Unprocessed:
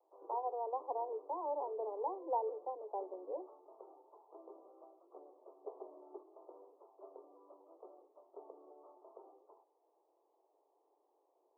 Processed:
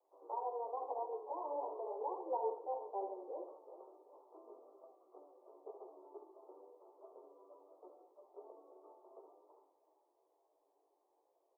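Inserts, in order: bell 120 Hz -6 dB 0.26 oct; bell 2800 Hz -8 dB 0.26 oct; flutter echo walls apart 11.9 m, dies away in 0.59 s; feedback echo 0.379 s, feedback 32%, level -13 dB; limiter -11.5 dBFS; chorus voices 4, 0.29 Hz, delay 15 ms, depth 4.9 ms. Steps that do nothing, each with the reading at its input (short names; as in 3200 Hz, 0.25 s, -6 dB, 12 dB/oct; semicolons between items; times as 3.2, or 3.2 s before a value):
bell 120 Hz: input band starts at 270 Hz; bell 2800 Hz: input band ends at 1200 Hz; limiter -11.5 dBFS: input peak -23.0 dBFS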